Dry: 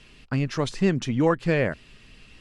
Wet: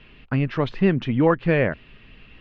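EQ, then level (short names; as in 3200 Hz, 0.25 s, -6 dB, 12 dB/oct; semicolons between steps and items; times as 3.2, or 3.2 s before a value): LPF 3200 Hz 24 dB/oct; +3.0 dB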